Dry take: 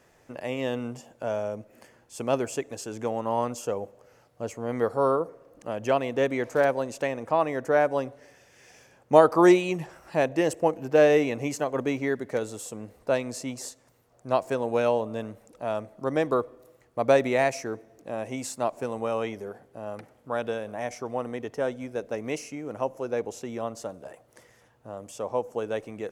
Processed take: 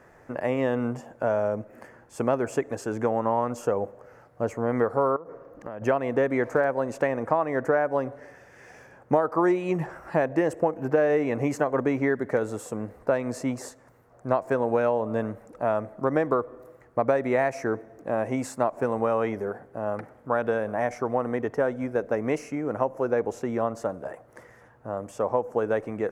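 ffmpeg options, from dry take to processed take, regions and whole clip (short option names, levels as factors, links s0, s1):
-filter_complex "[0:a]asettb=1/sr,asplit=3[s0][s1][s2];[s0]atrim=end=5.164[s3];[s1]atrim=start=5.16:end=5.82,asetpts=PTS-STARTPTS,afade=t=in:d=0.004:c=qsin,afade=t=out:st=0.656:d=0.004:c=qsin,equalizer=f=8800:w=3.4:g=-12.5,acompressor=threshold=0.0126:ratio=12:attack=3.2:release=140:knee=1:detection=peak[s4];[s2]atrim=start=5.816[s5];[s3][s4]acrossfade=d=0.004:c1=hsin:c2=qsin[s6];[s6][s5]acrossfade=d=0.004:c1=qsin:c2=hsin,highshelf=f=2300:t=q:w=1.5:g=-10,acompressor=threshold=0.0501:ratio=6,volume=2.11"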